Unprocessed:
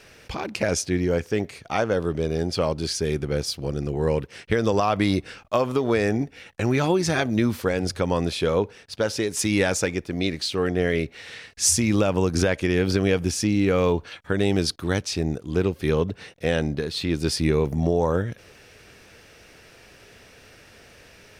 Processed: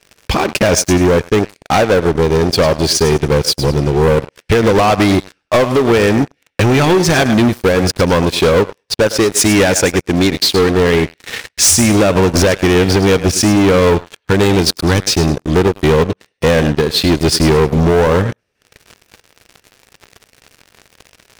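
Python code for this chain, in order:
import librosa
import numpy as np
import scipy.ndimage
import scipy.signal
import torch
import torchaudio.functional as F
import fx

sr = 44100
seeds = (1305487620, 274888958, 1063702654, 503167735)

y = fx.echo_thinned(x, sr, ms=104, feedback_pct=31, hz=360.0, wet_db=-11.0)
y = fx.transient(y, sr, attack_db=4, sustain_db=-11)
y = fx.leveller(y, sr, passes=5)
y = F.gain(torch.from_numpy(y), -1.5).numpy()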